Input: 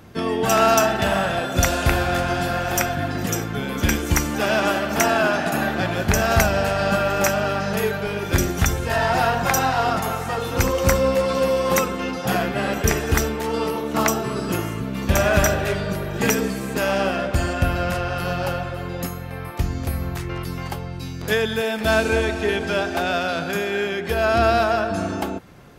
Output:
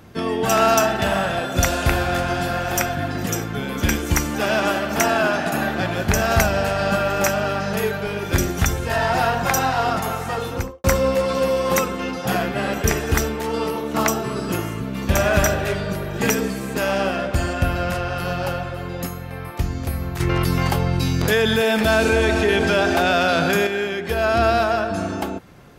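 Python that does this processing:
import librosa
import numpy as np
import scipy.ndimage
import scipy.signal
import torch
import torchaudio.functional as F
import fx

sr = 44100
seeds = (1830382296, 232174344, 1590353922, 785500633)

y = fx.studio_fade_out(x, sr, start_s=10.41, length_s=0.43)
y = fx.env_flatten(y, sr, amount_pct=70, at=(20.2, 23.67))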